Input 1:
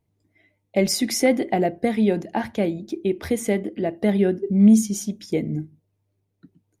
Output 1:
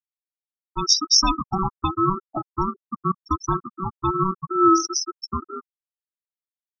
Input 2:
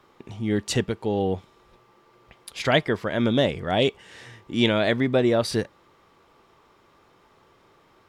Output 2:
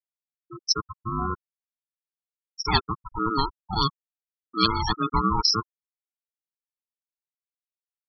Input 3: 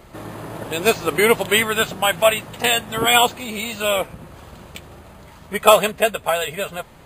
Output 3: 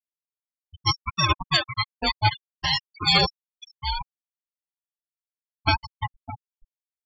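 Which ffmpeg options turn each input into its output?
-af "afftfilt=real='real(if(between(b,1,1008),(2*floor((b-1)/48)+1)*48-b,b),0)':imag='imag(if(between(b,1,1008),(2*floor((b-1)/48)+1)*48-b,b),0)*if(between(b,1,1008),-1,1)':win_size=2048:overlap=0.75,aeval=exprs='val(0)*sin(2*PI*480*n/s)':channel_layout=same,dynaudnorm=framelen=310:gausssize=7:maxgain=14dB,lowpass=frequency=5500:width_type=q:width=14,aeval=exprs='sgn(val(0))*max(abs(val(0))-0.0376,0)':channel_layout=same,afftfilt=real='re*gte(hypot(re,im),0.251)':imag='im*gte(hypot(re,im),0.251)':win_size=1024:overlap=0.75,volume=-4.5dB"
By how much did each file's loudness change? −0.5, −2.0, −6.0 LU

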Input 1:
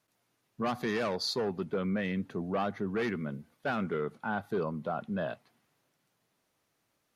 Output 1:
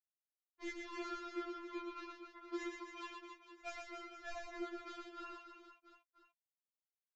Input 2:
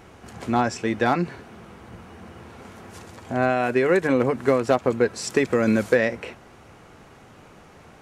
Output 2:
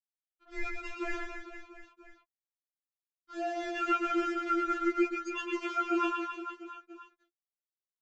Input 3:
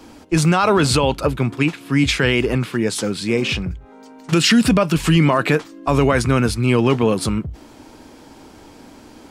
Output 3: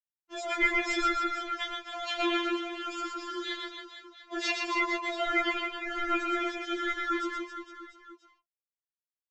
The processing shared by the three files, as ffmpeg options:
-filter_complex "[0:a]afftdn=noise_reduction=21:noise_floor=-27,highpass=480,equalizer=frequency=5300:width_type=o:width=1.2:gain=-9.5,acrusher=bits=5:mix=0:aa=0.5,flanger=delay=1.5:depth=6.2:regen=60:speed=0.69:shape=triangular,aeval=exprs='val(0)*sin(2*PI*840*n/s)':channel_layout=same,asplit=2[link_01][link_02];[link_02]aecho=0:1:120|270|457.5|691.9|984.8:0.631|0.398|0.251|0.158|0.1[link_03];[link_01][link_03]amix=inputs=2:normalize=0,aresample=16000,aresample=44100,afftfilt=real='re*4*eq(mod(b,16),0)':imag='im*4*eq(mod(b,16),0)':win_size=2048:overlap=0.75"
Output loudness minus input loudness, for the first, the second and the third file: −13.5, −10.5, −13.0 LU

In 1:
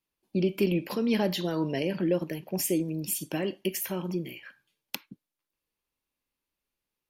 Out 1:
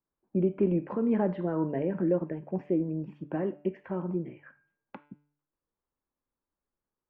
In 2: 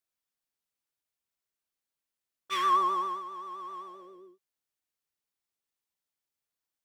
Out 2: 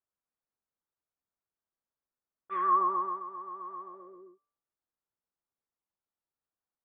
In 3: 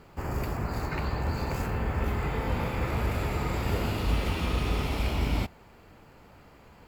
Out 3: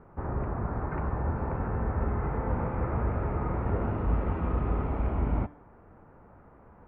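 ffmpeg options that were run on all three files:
-af "lowpass=frequency=1500:width=0.5412,lowpass=frequency=1500:width=1.3066,bandreject=frequency=146.4:width_type=h:width=4,bandreject=frequency=292.8:width_type=h:width=4,bandreject=frequency=439.2:width_type=h:width=4,bandreject=frequency=585.6:width_type=h:width=4,bandreject=frequency=732:width_type=h:width=4,bandreject=frequency=878.4:width_type=h:width=4,bandreject=frequency=1024.8:width_type=h:width=4,bandreject=frequency=1171.2:width_type=h:width=4,bandreject=frequency=1317.6:width_type=h:width=4,bandreject=frequency=1464:width_type=h:width=4,bandreject=frequency=1610.4:width_type=h:width=4,bandreject=frequency=1756.8:width_type=h:width=4,bandreject=frequency=1903.2:width_type=h:width=4,bandreject=frequency=2049.6:width_type=h:width=4,bandreject=frequency=2196:width_type=h:width=4,bandreject=frequency=2342.4:width_type=h:width=4,bandreject=frequency=2488.8:width_type=h:width=4,bandreject=frequency=2635.2:width_type=h:width=4,bandreject=frequency=2781.6:width_type=h:width=4,bandreject=frequency=2928:width_type=h:width=4,bandreject=frequency=3074.4:width_type=h:width=4,bandreject=frequency=3220.8:width_type=h:width=4,bandreject=frequency=3367.2:width_type=h:width=4,bandreject=frequency=3513.6:width_type=h:width=4,bandreject=frequency=3660:width_type=h:width=4,bandreject=frequency=3806.4:width_type=h:width=4,bandreject=frequency=3952.8:width_type=h:width=4"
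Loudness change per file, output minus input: −0.5, −1.5, −0.5 LU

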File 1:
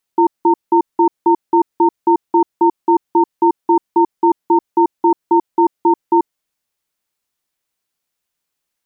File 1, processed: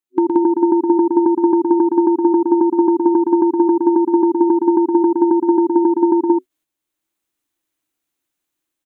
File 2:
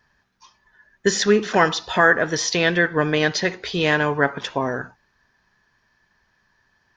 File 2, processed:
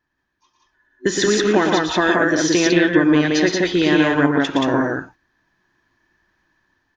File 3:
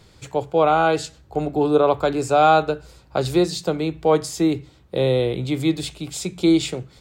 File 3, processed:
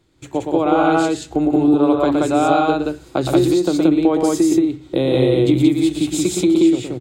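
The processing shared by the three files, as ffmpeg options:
-filter_complex "[0:a]agate=range=-11dB:threshold=-45dB:ratio=16:detection=peak,dynaudnorm=framelen=240:gausssize=5:maxgain=8dB,superequalizer=6b=3.55:14b=0.631,acompressor=threshold=-13dB:ratio=6,asplit=2[link_01][link_02];[link_02]aecho=0:1:116.6|177.8:0.562|0.891[link_03];[link_01][link_03]amix=inputs=2:normalize=0,volume=-1dB"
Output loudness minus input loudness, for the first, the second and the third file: +1.0, +3.0, +4.0 LU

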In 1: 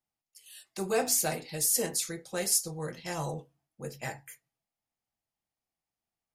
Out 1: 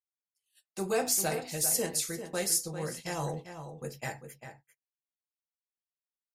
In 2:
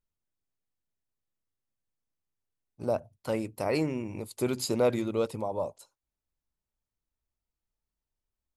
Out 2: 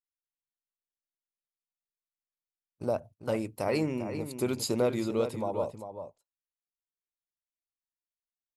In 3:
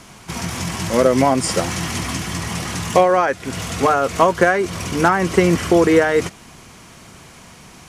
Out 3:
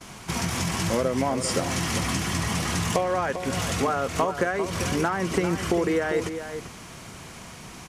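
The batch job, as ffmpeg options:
-filter_complex "[0:a]agate=range=-28dB:threshold=-46dB:ratio=16:detection=peak,acompressor=threshold=-23dB:ratio=4,asplit=2[link_01][link_02];[link_02]adelay=396.5,volume=-9dB,highshelf=frequency=4000:gain=-8.92[link_03];[link_01][link_03]amix=inputs=2:normalize=0"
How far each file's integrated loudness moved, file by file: −1.0, −0.5, −8.0 LU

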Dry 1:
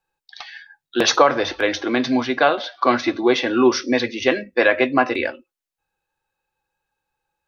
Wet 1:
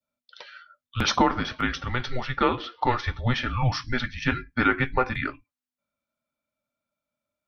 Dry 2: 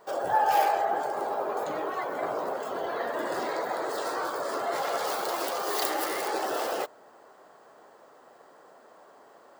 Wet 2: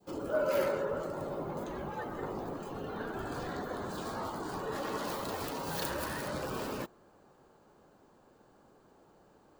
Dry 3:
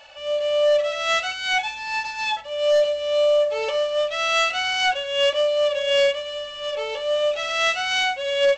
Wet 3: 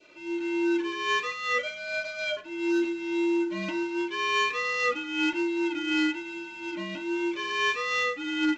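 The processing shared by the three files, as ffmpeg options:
-af "afreqshift=-250,adynamicequalizer=threshold=0.0158:dfrequency=1400:dqfactor=0.86:tfrequency=1400:tqfactor=0.86:attack=5:release=100:ratio=0.375:range=2.5:mode=boostabove:tftype=bell,volume=-8dB"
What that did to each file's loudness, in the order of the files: −7.0, −7.0, −6.5 LU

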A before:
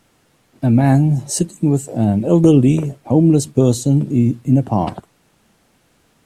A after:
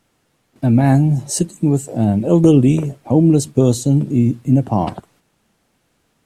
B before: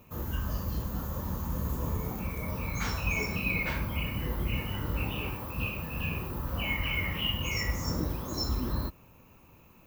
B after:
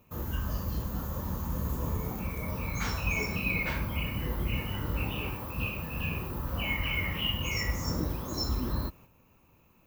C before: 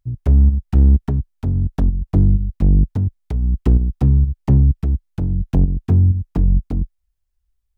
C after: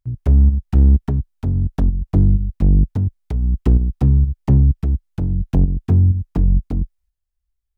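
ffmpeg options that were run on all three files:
-af "agate=range=-6dB:threshold=-52dB:ratio=16:detection=peak"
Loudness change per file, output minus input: 0.0, 0.0, 0.0 LU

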